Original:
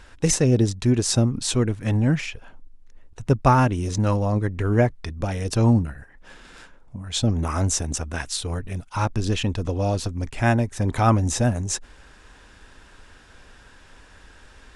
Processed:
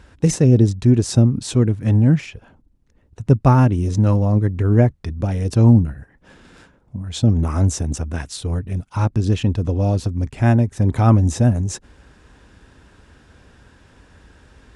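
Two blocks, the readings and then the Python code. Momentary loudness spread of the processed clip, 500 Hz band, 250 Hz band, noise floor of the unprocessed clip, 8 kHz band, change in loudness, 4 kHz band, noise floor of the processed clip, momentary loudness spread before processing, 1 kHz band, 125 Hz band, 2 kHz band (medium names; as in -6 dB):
12 LU, +1.5 dB, +5.5 dB, -50 dBFS, -4.0 dB, +5.0 dB, -4.0 dB, -56 dBFS, 10 LU, -1.5 dB, +7.0 dB, -3.0 dB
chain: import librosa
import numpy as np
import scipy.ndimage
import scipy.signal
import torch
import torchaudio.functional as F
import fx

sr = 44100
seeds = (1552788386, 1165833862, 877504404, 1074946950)

y = scipy.signal.sosfilt(scipy.signal.butter(2, 63.0, 'highpass', fs=sr, output='sos'), x)
y = fx.low_shelf(y, sr, hz=460.0, db=12.0)
y = y * 10.0 ** (-4.0 / 20.0)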